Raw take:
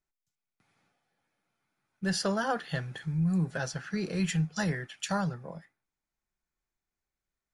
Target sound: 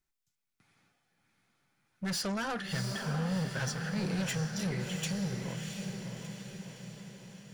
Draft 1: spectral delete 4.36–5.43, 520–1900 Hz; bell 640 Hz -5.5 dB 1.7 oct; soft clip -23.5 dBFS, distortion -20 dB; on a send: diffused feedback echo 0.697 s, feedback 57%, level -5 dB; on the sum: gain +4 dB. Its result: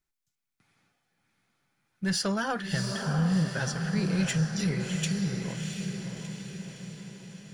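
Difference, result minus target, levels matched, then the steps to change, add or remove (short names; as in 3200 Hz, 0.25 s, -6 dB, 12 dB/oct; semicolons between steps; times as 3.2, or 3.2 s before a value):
soft clip: distortion -13 dB
change: soft clip -35 dBFS, distortion -8 dB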